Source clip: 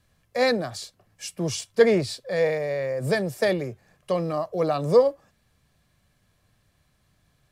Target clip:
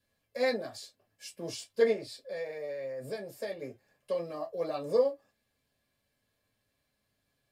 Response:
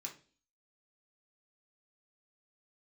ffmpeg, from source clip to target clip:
-filter_complex "[0:a]asettb=1/sr,asplit=3[a][b][c];[a]atrim=end=1.924[d];[b]atrim=start=1.92:end=3.62,asetpts=PTS-STARTPTS,afade=t=in:d=0.004:c=qsin,afade=t=out:st=1.696:d=0.004:c=qsin,acompressor=threshold=-30dB:ratio=2[e];[c]atrim=start=3.616[f];[d][e]acrossfade=d=0.004:c1=hsin:c2=qsin[g];[g][f]acrossfade=d=0.004:c1=qsin:c2=hsin[h];[1:a]atrim=start_sample=2205,afade=t=out:st=0.16:d=0.01,atrim=end_sample=7497,asetrate=88200,aresample=44100[i];[h][i]afir=irnorm=-1:irlink=0"

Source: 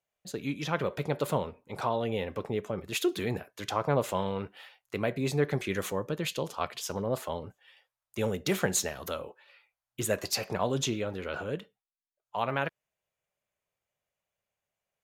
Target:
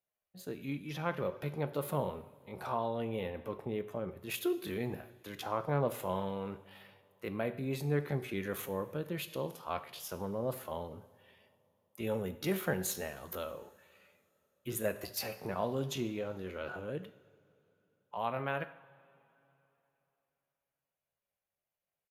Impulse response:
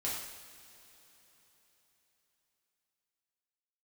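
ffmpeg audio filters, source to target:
-filter_complex "[0:a]highshelf=f=3.9k:g=-8,atempo=0.68,aexciter=amount=5.8:drive=3.1:freq=10k,asplit=2[a][b];[1:a]atrim=start_sample=2205,asetrate=57330,aresample=44100[c];[b][c]afir=irnorm=-1:irlink=0,volume=-10dB[d];[a][d]amix=inputs=2:normalize=0,aresample=32000,aresample=44100,volume=-6.5dB"

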